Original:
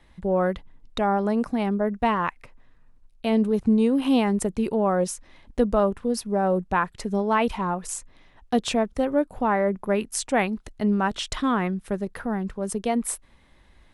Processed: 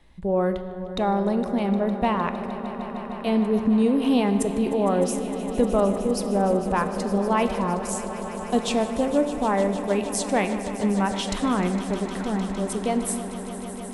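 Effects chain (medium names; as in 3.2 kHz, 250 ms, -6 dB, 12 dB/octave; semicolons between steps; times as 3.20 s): peaking EQ 1.5 kHz -4.5 dB 0.92 oct; echo with a slow build-up 153 ms, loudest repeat 5, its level -16 dB; on a send at -9 dB: reverberation RT60 1.7 s, pre-delay 10 ms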